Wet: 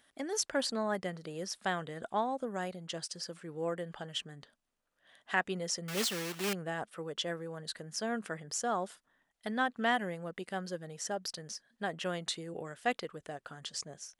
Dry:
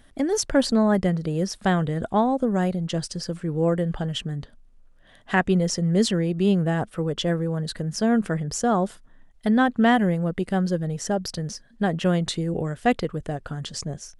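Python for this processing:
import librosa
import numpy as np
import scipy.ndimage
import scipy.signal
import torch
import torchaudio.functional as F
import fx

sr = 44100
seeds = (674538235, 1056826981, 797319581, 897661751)

y = fx.block_float(x, sr, bits=3, at=(5.88, 6.54))
y = fx.highpass(y, sr, hz=890.0, slope=6)
y = y * 10.0 ** (-6.0 / 20.0)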